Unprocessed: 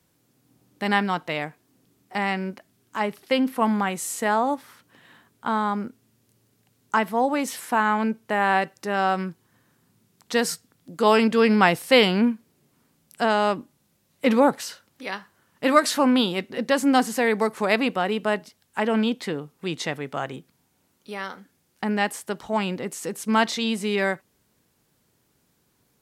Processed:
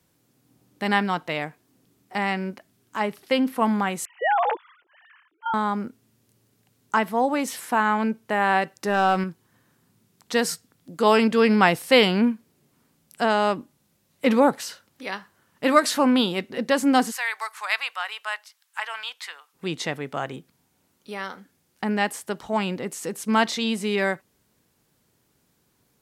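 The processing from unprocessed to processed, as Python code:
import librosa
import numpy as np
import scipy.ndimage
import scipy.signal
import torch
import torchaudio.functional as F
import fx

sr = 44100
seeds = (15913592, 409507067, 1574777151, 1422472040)

y = fx.sine_speech(x, sr, at=(4.05, 5.54))
y = fx.leveller(y, sr, passes=1, at=(8.76, 9.24))
y = fx.highpass(y, sr, hz=1000.0, slope=24, at=(17.1, 19.53), fade=0.02)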